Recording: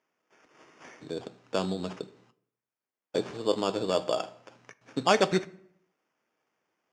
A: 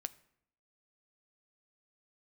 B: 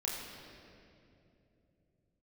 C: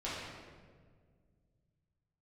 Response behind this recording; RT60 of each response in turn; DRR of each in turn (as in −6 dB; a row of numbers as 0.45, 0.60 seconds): A; 0.70, 2.9, 1.8 seconds; 12.0, −4.0, −10.0 decibels